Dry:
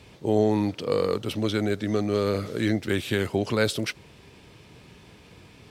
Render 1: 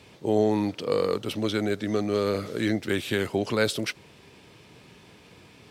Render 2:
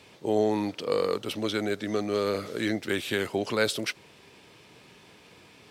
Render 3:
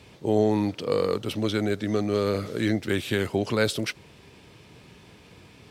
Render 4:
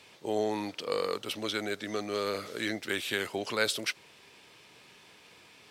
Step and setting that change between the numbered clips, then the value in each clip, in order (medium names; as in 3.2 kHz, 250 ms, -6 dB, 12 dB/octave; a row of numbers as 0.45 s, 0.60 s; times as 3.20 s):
high-pass, cutoff frequency: 140 Hz, 350 Hz, 51 Hz, 990 Hz